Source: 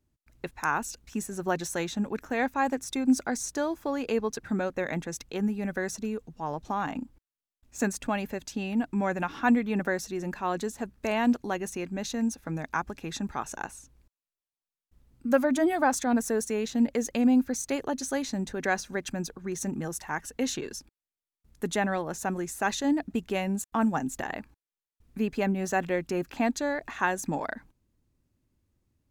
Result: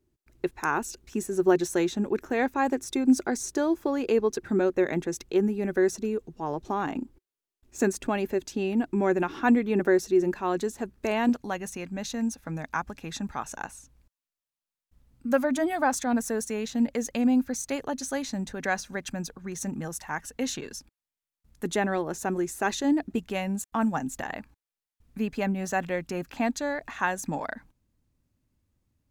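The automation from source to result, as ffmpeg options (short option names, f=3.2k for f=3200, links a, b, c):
-af "asetnsamples=n=441:p=0,asendcmd='10.32 equalizer g 7;11.29 equalizer g -5;21.65 equalizer g 6.5;23.18 equalizer g -4.5',equalizer=f=370:t=o:w=0.44:g=13"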